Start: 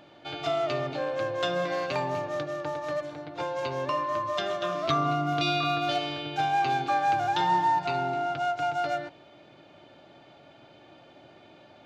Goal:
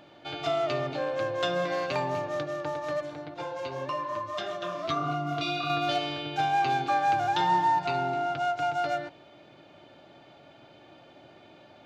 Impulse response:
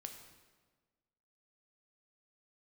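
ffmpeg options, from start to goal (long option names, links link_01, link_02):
-filter_complex "[0:a]asettb=1/sr,asplit=3[link_01][link_02][link_03];[link_01]atrim=end=3.344[link_04];[link_02]atrim=start=3.34:end=5.7,asetpts=PTS-STARTPTS,afade=type=in:duration=0.004:curve=qsin,afade=type=out:start_time=2.356:duration=0.004:curve=qsin,flanger=delay=5.4:depth=5.6:regen=-41:speed=1.6:shape=sinusoidal[link_05];[link_03]atrim=start=5.696[link_06];[link_04][link_05]acrossfade=duration=0.004:curve1=hsin:curve2=qsin[link_07];[link_07][link_06]acrossfade=duration=0.004:curve1=qsin:curve2=hsin"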